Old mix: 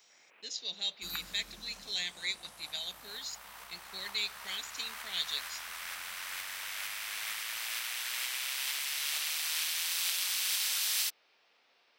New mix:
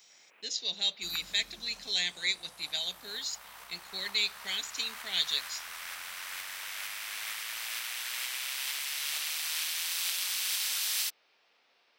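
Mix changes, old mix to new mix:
speech +5.0 dB; second sound: send -9.5 dB

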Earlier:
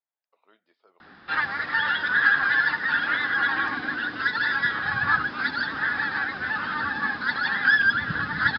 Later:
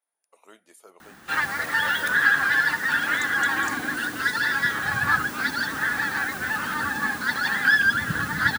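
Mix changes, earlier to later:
speech +8.5 dB; master: remove rippled Chebyshev low-pass 5100 Hz, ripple 3 dB

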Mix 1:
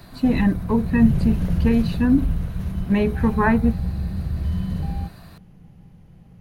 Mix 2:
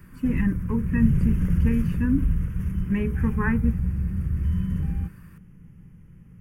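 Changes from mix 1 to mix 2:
speech -4.5 dB; master: add fixed phaser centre 1700 Hz, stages 4

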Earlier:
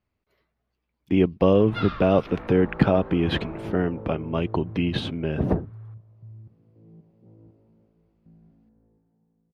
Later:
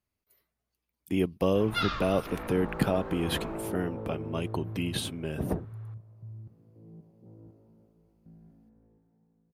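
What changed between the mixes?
speech -8.0 dB; master: remove air absorption 230 m

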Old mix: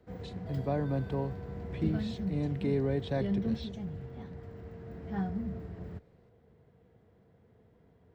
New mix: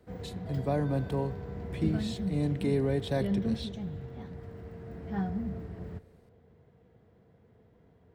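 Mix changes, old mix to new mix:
speech: remove air absorption 120 m; reverb: on, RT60 1.7 s

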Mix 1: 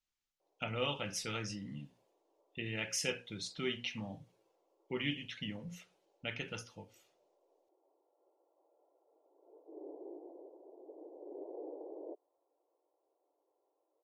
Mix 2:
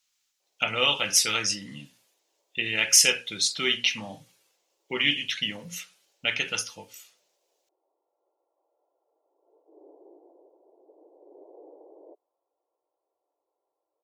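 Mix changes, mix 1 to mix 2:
speech +11.0 dB; master: add tilt +3.5 dB/oct

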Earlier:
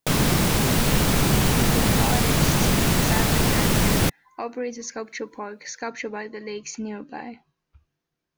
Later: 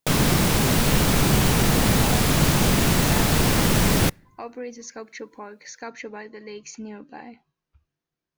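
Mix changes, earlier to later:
speech -5.0 dB; reverb: on, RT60 0.65 s

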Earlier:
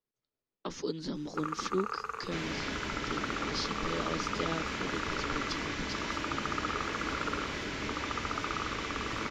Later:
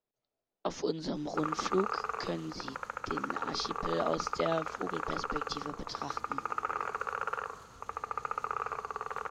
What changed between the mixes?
second sound: muted; master: add bell 690 Hz +12 dB 0.68 oct

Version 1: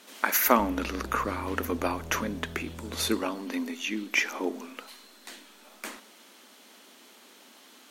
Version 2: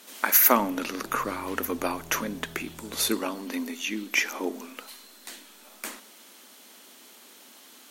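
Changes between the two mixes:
background: add fixed phaser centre 340 Hz, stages 8; master: add high shelf 7200 Hz +9.5 dB

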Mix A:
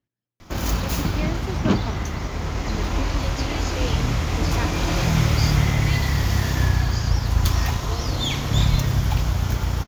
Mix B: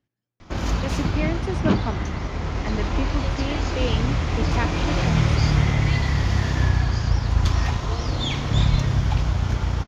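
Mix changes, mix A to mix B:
speech +4.5 dB; background: add air absorption 90 m

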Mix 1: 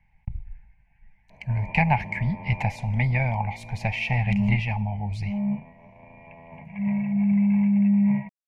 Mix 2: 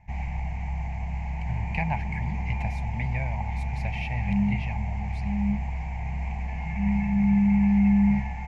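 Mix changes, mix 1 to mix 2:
speech -8.0 dB; first sound: unmuted; second sound: add bell 620 Hz -14 dB 0.56 oct

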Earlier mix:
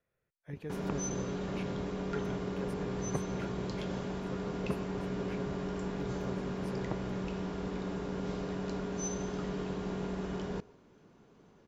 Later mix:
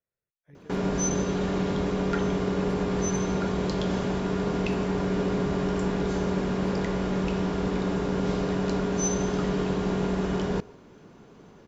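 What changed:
speech -10.5 dB; background +10.0 dB

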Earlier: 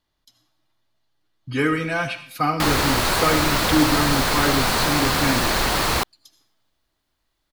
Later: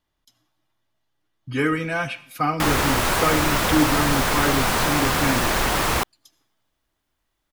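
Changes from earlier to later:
speech: send -7.0 dB; master: add bell 4300 Hz -7 dB 0.37 oct

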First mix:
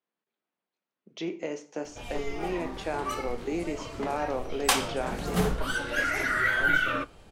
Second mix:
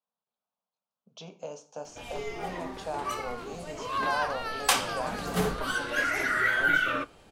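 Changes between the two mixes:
speech: add fixed phaser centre 820 Hz, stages 4; first sound: add low shelf 110 Hz -9.5 dB; second sound: unmuted

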